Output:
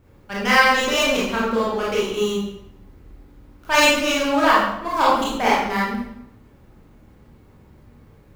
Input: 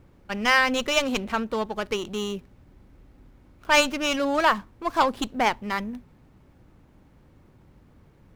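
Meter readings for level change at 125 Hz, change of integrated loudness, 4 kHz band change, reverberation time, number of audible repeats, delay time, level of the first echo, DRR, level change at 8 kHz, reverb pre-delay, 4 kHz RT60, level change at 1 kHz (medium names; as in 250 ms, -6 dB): +6.0 dB, +5.0 dB, +5.0 dB, 0.80 s, no echo, no echo, no echo, -7.0 dB, +5.5 dB, 23 ms, 0.65 s, +5.5 dB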